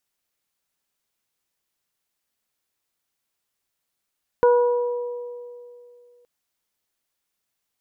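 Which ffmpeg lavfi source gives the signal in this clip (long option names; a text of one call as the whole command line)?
ffmpeg -f lavfi -i "aevalsrc='0.251*pow(10,-3*t/2.6)*sin(2*PI*485*t)+0.112*pow(10,-3*t/1.72)*sin(2*PI*970*t)+0.0355*pow(10,-3*t/0.7)*sin(2*PI*1455*t)':duration=1.82:sample_rate=44100" out.wav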